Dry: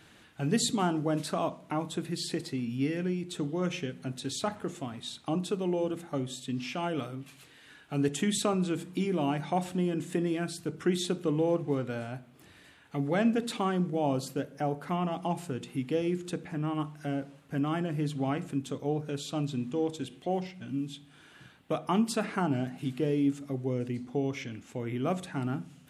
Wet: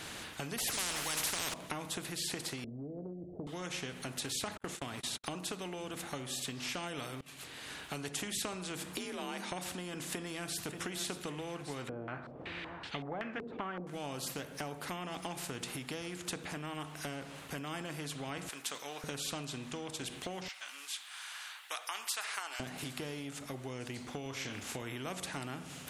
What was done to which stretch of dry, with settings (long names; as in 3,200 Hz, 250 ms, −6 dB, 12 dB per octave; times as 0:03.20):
0:00.58–0:01.54: every bin compressed towards the loudest bin 10 to 1
0:02.64–0:03.47: Chebyshev low-pass filter 660 Hz, order 5
0:04.57–0:05.24: noise gate −45 dBFS, range −55 dB
0:07.21–0:07.93: fade in, from −23.5 dB
0:08.96–0:09.52: frequency shifter +49 Hz
0:10.10–0:10.66: delay throw 580 ms, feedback 70%, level −15 dB
0:11.89–0:13.87: low-pass on a step sequencer 5.3 Hz 420–3,200 Hz
0:18.49–0:19.04: high-pass filter 1,100 Hz
0:20.48–0:22.60: high-pass filter 1,100 Hz 24 dB per octave
0:24.23–0:24.82: double-tracking delay 30 ms −7 dB
whole clip: downward compressor 3 to 1, threshold −40 dBFS; every bin compressed towards the loudest bin 2 to 1; level +4.5 dB